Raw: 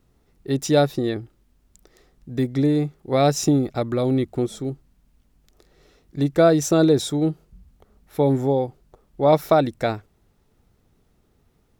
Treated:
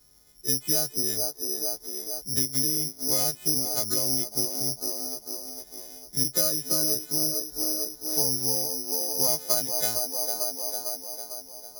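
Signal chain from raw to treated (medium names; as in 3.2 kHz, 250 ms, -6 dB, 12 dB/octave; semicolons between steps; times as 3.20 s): partials quantised in pitch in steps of 3 st; 7.14–8.39 s: peaking EQ 2.3 kHz -7 dB 0.45 oct; feedback echo behind a band-pass 450 ms, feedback 49%, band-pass 550 Hz, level -9 dB; careless resampling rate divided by 8×, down filtered, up zero stuff; compression 4:1, threshold -17 dBFS, peak gain reduction 16.5 dB; trim -4 dB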